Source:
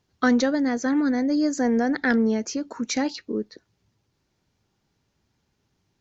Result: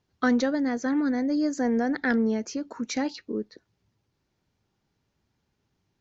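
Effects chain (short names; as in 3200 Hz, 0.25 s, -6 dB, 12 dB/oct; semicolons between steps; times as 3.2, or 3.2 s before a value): high shelf 6200 Hz -6.5 dB; gain -3 dB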